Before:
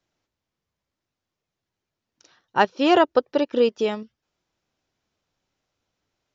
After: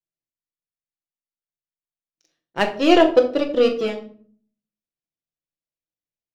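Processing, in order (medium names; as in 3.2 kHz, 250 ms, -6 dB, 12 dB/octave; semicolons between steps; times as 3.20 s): high-order bell 1.1 kHz -9 dB 1.1 oct; power-law waveshaper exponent 1.4; on a send: reverberation RT60 0.50 s, pre-delay 6 ms, DRR 3 dB; on the sum: trim +3.5 dB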